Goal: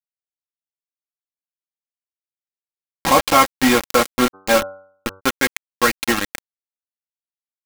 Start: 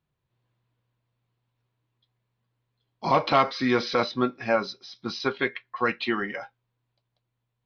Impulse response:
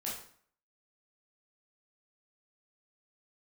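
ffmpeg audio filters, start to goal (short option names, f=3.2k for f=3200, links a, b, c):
-filter_complex "[0:a]acrusher=bits=3:mix=0:aa=0.000001,aecho=1:1:3.7:0.49,asplit=3[a][b][c];[a]afade=t=out:st=4.33:d=0.02[d];[b]bandreject=f=96.03:t=h:w=4,bandreject=f=192.06:t=h:w=4,bandreject=f=288.09:t=h:w=4,bandreject=f=384.12:t=h:w=4,bandreject=f=480.15:t=h:w=4,bandreject=f=576.18:t=h:w=4,bandreject=f=672.21:t=h:w=4,bandreject=f=768.24:t=h:w=4,bandreject=f=864.27:t=h:w=4,bandreject=f=960.3:t=h:w=4,bandreject=f=1.05633k:t=h:w=4,bandreject=f=1.15236k:t=h:w=4,bandreject=f=1.24839k:t=h:w=4,bandreject=f=1.34442k:t=h:w=4,bandreject=f=1.44045k:t=h:w=4,bandreject=f=1.53648k:t=h:w=4,afade=t=in:st=4.33:d=0.02,afade=t=out:st=5.19:d=0.02[e];[c]afade=t=in:st=5.19:d=0.02[f];[d][e][f]amix=inputs=3:normalize=0,volume=5.5dB"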